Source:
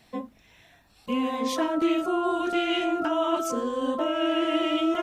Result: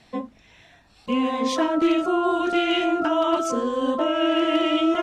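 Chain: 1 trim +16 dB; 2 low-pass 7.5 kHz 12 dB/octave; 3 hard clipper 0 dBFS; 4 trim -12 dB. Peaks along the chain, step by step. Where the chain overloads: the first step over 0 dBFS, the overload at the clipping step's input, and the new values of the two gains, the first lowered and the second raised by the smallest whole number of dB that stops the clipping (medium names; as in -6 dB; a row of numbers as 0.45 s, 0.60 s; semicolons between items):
+3.5 dBFS, +3.5 dBFS, 0.0 dBFS, -12.0 dBFS; step 1, 3.5 dB; step 1 +12 dB, step 4 -8 dB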